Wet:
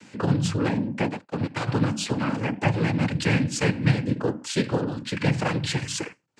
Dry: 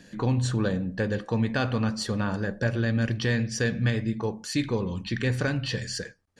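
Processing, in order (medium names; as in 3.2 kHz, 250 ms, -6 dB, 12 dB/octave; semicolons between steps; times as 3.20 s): 1.08–1.67 s: power-law waveshaper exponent 2; noise-vocoded speech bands 8; trim +3 dB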